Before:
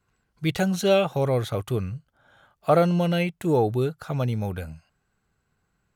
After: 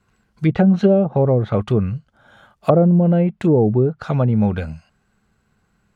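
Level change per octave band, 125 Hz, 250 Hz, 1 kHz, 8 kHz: +9.0 dB, +10.0 dB, +1.5 dB, below −10 dB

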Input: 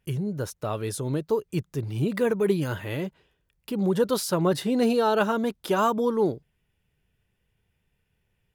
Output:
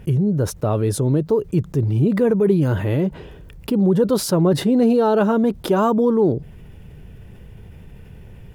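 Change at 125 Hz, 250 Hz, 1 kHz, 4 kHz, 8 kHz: +11.0, +9.0, +3.0, +2.5, +5.0 decibels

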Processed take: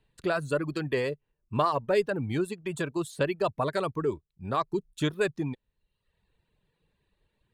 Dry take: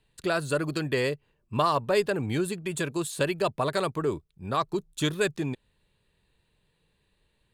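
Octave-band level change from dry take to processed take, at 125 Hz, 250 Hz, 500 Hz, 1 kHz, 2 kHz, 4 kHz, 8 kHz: −1.5, −1.0, −1.0, −1.5, −2.5, −5.5, −9.0 decibels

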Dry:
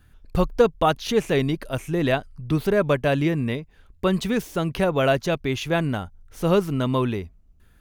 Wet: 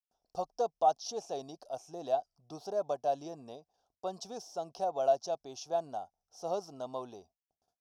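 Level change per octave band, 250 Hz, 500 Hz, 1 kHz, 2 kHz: −25.0, −11.5, −6.0, −29.0 decibels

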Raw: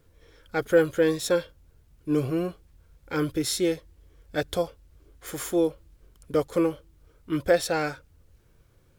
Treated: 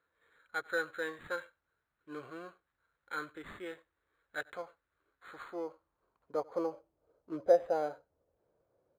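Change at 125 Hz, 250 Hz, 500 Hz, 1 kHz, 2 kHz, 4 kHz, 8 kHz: −25.0, −18.0, −9.5, −6.0, −6.0, −17.0, −25.0 decibels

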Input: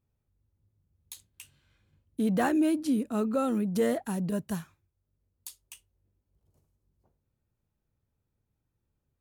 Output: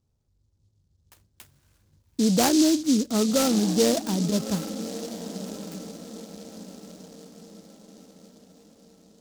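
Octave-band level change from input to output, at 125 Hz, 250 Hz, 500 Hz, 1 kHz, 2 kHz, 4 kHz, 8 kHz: +6.0, +5.5, +5.0, +3.5, +2.0, +17.5, +16.5 decibels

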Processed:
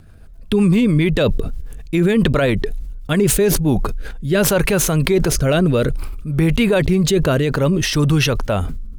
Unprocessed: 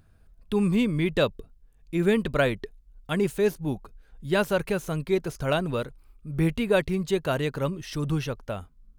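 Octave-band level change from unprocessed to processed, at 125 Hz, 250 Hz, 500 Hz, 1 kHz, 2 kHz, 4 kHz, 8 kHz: +12.5, +10.5, +8.0, +6.5, +8.0, +11.5, +21.0 decibels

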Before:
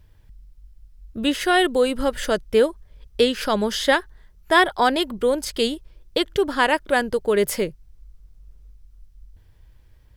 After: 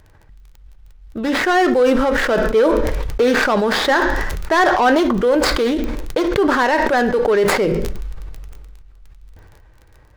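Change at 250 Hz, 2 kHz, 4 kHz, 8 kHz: +6.5, +5.0, 0.0, +1.5 decibels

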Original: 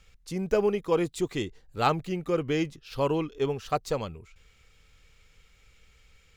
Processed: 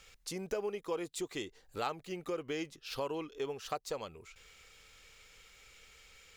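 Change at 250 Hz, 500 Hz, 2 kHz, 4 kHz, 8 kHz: −12.0, −10.5, −8.0, −5.0, −1.5 decibels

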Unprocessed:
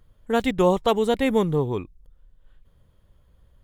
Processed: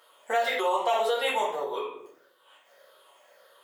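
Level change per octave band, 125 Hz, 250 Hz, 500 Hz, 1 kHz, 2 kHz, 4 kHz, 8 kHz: below −35 dB, −21.0 dB, −5.5 dB, +1.0 dB, +1.5 dB, +0.5 dB, −0.5 dB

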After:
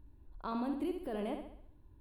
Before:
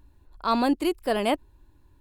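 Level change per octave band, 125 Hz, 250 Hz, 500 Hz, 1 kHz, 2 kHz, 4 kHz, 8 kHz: can't be measured, −11.0 dB, −13.0 dB, −16.0 dB, −19.0 dB, −21.0 dB, below −20 dB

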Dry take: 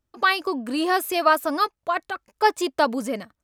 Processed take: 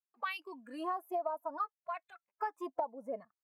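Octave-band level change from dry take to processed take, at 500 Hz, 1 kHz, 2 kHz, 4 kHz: −15.0 dB, −15.5 dB, −21.5 dB, below −20 dB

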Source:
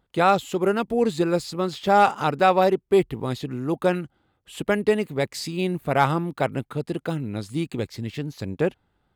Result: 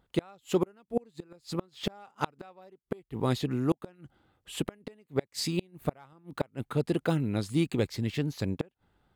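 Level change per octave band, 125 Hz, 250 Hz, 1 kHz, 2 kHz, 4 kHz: −4.0, −6.0, −18.0, −13.5, −5.0 decibels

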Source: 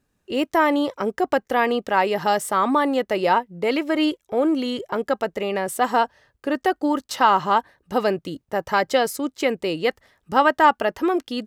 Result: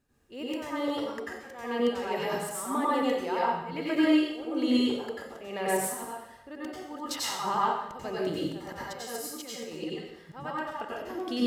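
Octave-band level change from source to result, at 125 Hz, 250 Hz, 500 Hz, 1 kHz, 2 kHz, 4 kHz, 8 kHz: −6.0, −5.5, −10.0, −12.0, −12.0, −6.0, −1.5 decibels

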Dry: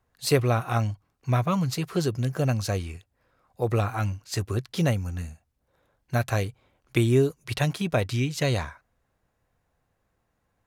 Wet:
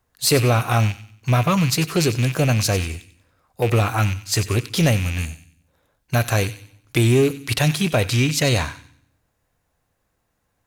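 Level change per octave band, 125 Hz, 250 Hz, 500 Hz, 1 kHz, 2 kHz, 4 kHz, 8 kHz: +6.5, +6.0, +5.0, +6.0, +9.0, +10.5, +12.0 decibels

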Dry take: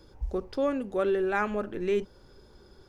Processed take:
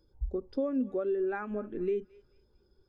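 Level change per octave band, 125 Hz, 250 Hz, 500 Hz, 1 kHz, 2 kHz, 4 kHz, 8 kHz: −3.5 dB, −1.0 dB, −4.0 dB, −10.0 dB, −10.0 dB, below −10 dB, can't be measured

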